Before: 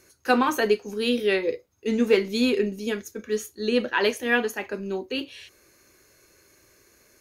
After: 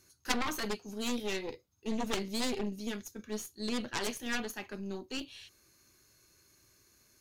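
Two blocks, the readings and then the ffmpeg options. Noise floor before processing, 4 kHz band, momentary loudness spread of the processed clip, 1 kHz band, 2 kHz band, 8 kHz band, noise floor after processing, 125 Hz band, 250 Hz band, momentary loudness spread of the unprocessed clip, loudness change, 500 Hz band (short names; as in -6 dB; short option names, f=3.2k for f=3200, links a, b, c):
-60 dBFS, -7.0 dB, 9 LU, -11.5 dB, -12.5 dB, -1.5 dB, -69 dBFS, n/a, -10.5 dB, 10 LU, -11.5 dB, -16.0 dB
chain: -af "equalizer=f=125:t=o:w=1:g=3,equalizer=f=500:t=o:w=1:g=-10,equalizer=f=2k:t=o:w=1:g=-6,equalizer=f=4k:t=o:w=1:g=3,aeval=exprs='0.282*(cos(1*acos(clip(val(0)/0.282,-1,1)))-cos(1*PI/2))+0.141*(cos(3*acos(clip(val(0)/0.282,-1,1)))-cos(3*PI/2))+0.0141*(cos(8*acos(clip(val(0)/0.282,-1,1)))-cos(8*PI/2))':c=same"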